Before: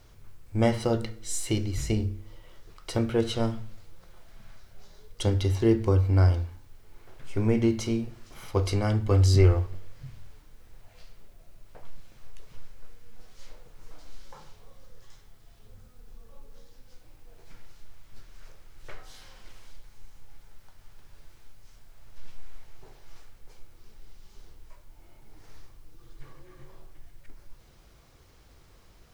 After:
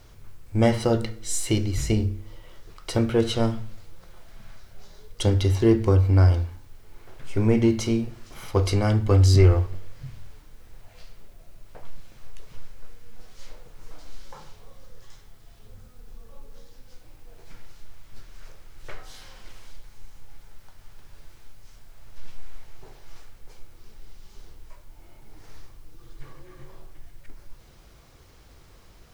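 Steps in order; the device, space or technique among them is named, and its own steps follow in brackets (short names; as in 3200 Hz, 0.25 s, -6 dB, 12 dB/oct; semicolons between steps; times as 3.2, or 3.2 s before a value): parallel distortion (in parallel at -8.5 dB: hard clip -19.5 dBFS, distortion -12 dB); on the sum: gain +1.5 dB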